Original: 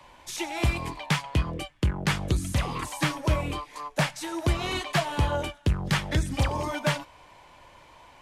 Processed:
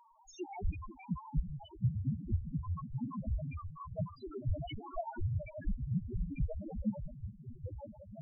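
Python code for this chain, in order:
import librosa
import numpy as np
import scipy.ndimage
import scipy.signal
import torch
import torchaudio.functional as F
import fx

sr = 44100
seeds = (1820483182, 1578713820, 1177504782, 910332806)

y = fx.reverse_delay_fb(x, sr, ms=661, feedback_pct=56, wet_db=-7.0)
y = fx.whisperise(y, sr, seeds[0])
y = fx.spec_topn(y, sr, count=1)
y = y * 10.0 ** (1.5 / 20.0)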